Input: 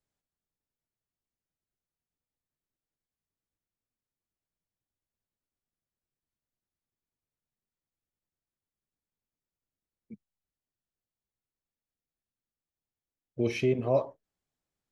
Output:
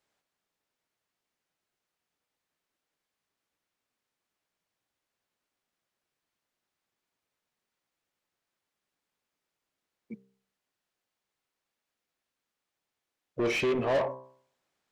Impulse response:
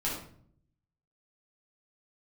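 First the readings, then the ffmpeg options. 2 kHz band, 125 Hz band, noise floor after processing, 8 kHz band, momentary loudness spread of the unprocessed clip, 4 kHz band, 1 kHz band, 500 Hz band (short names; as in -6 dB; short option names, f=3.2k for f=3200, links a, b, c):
+7.0 dB, -7.0 dB, under -85 dBFS, n/a, 17 LU, +6.0 dB, +4.5 dB, 0.0 dB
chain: -filter_complex "[0:a]bandreject=f=65.28:t=h:w=4,bandreject=f=130.56:t=h:w=4,bandreject=f=195.84:t=h:w=4,bandreject=f=261.12:t=h:w=4,bandreject=f=326.4:t=h:w=4,bandreject=f=391.68:t=h:w=4,bandreject=f=456.96:t=h:w=4,bandreject=f=522.24:t=h:w=4,bandreject=f=587.52:t=h:w=4,bandreject=f=652.8:t=h:w=4,bandreject=f=718.08:t=h:w=4,bandreject=f=783.36:t=h:w=4,bandreject=f=848.64:t=h:w=4,bandreject=f=913.92:t=h:w=4,bandreject=f=979.2:t=h:w=4,bandreject=f=1.04448k:t=h:w=4,bandreject=f=1.10976k:t=h:w=4,bandreject=f=1.17504k:t=h:w=4,bandreject=f=1.24032k:t=h:w=4,bandreject=f=1.3056k:t=h:w=4,bandreject=f=1.37088k:t=h:w=4,bandreject=f=1.43616k:t=h:w=4,bandreject=f=1.50144k:t=h:w=4,bandreject=f=1.56672k:t=h:w=4,bandreject=f=1.632k:t=h:w=4,bandreject=f=1.69728k:t=h:w=4,bandreject=f=1.76256k:t=h:w=4,bandreject=f=1.82784k:t=h:w=4,bandreject=f=1.89312k:t=h:w=4,bandreject=f=1.9584k:t=h:w=4,bandreject=f=2.02368k:t=h:w=4,asplit=2[a][b];[b]highpass=f=720:p=1,volume=25dB,asoftclip=type=tanh:threshold=-15dB[c];[a][c]amix=inputs=2:normalize=0,lowpass=f=2.9k:p=1,volume=-6dB,volume=-4.5dB"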